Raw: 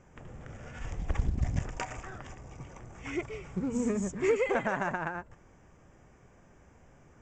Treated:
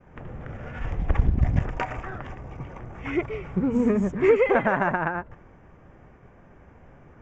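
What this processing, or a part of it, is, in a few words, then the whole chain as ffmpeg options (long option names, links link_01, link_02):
hearing-loss simulation: -af "lowpass=2400,agate=range=-33dB:threshold=-56dB:ratio=3:detection=peak,volume=8.5dB"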